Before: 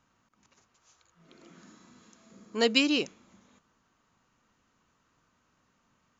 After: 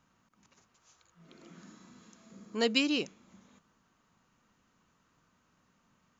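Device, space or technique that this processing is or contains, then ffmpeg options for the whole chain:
parallel compression: -filter_complex "[0:a]asplit=2[a][b];[b]acompressor=threshold=-46dB:ratio=6,volume=-5dB[c];[a][c]amix=inputs=2:normalize=0,equalizer=f=180:t=o:w=0.58:g=4.5,volume=-4.5dB"

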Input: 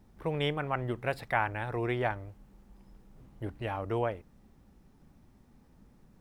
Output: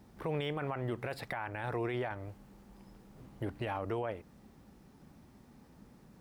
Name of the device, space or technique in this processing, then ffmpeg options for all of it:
broadcast voice chain: -af "highpass=f=120:p=1,deesser=0.9,acompressor=threshold=-35dB:ratio=3,equalizer=f=4.6k:t=o:w=0.24:g=2,alimiter=level_in=7dB:limit=-24dB:level=0:latency=1:release=14,volume=-7dB,volume=5dB"

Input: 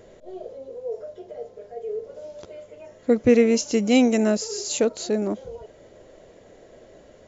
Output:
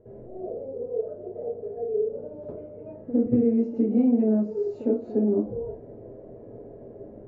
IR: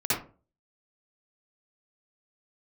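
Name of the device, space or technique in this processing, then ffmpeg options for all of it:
television next door: -filter_complex "[0:a]acompressor=threshold=-30dB:ratio=4,lowpass=520[a];[1:a]atrim=start_sample=2205[b];[a][b]afir=irnorm=-1:irlink=0,volume=-3.5dB"

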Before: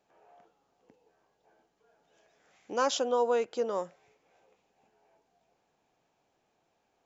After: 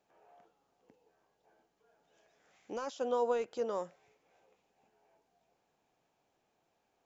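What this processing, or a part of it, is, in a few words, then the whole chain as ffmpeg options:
de-esser from a sidechain: -filter_complex "[0:a]asplit=2[a][b];[b]highpass=5.1k,apad=whole_len=311158[c];[a][c]sidechaincompress=threshold=-51dB:ratio=4:attack=0.94:release=37,volume=-3dB"

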